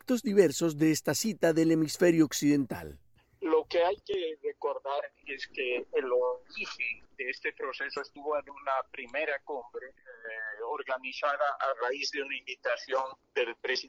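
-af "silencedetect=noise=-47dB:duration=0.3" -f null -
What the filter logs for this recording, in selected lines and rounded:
silence_start: 2.96
silence_end: 3.42 | silence_duration: 0.46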